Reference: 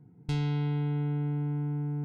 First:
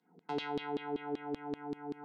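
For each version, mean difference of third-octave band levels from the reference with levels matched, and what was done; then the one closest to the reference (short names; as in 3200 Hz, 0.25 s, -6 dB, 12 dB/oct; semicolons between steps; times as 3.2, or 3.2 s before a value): 8.0 dB: rippled Chebyshev high-pass 160 Hz, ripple 3 dB; notch 2300 Hz, Q 12; LFO band-pass saw down 5.2 Hz 340–4100 Hz; gain +11.5 dB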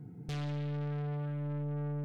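4.0 dB: in parallel at +0.5 dB: compressor, threshold -40 dBFS, peak gain reduction 13 dB; on the sum: soft clip -36 dBFS, distortion -8 dB; notch 970 Hz, Q 6.4; gain +1.5 dB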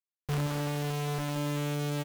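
13.0 dB: Schmitt trigger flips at -39 dBFS; doubler 14 ms -12.5 dB; on a send: echo 0.175 s -7 dB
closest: second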